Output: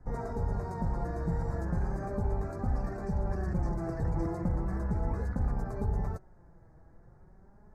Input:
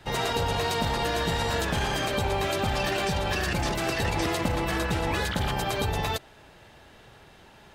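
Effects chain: flange 0.37 Hz, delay 4 ms, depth 2.3 ms, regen +40%; Butterworth band-stop 3.1 kHz, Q 0.7; RIAA curve playback; trim -8.5 dB

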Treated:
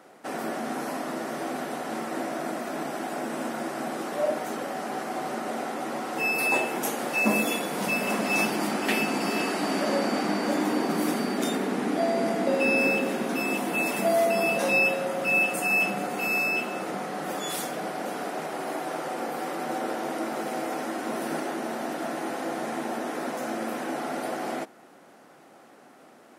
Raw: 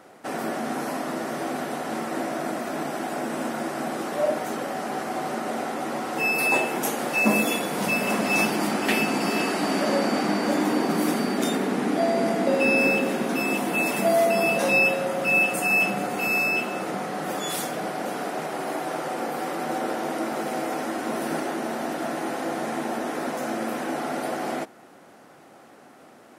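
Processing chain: high-pass 140 Hz; trim -2.5 dB

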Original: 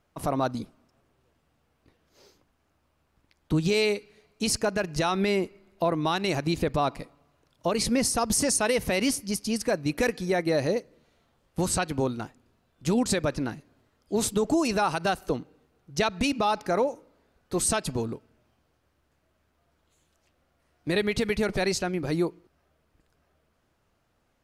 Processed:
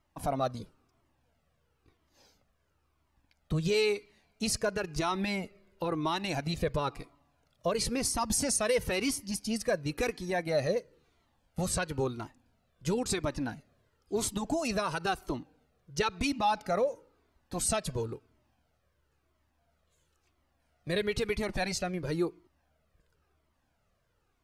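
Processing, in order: Shepard-style flanger falling 0.98 Hz

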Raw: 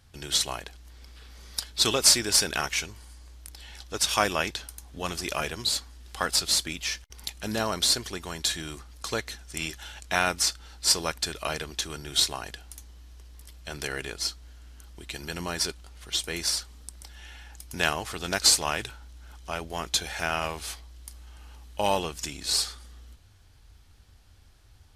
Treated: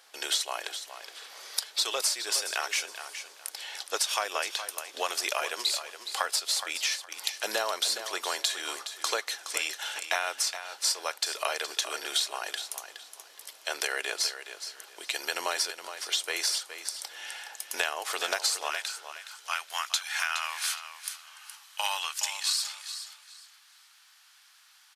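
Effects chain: high-pass 490 Hz 24 dB/octave, from 18.70 s 1.1 kHz; compression 10:1, threshold -33 dBFS, peak gain reduction 19.5 dB; feedback delay 418 ms, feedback 23%, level -10.5 dB; trim +7.5 dB

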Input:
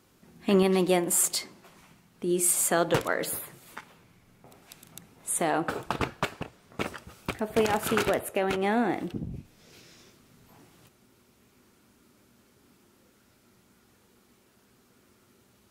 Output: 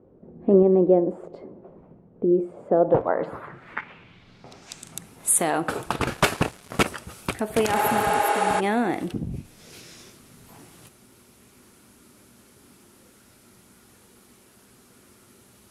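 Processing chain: 7.79–8.57 s: spectral replace 300–11000 Hz before; in parallel at +2 dB: compression, threshold -34 dBFS, peak gain reduction 15.5 dB; 6.07–6.83 s: on the sum: waveshaping leveller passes 3; low-pass sweep 510 Hz -> 11 kHz, 2.71–5.09 s

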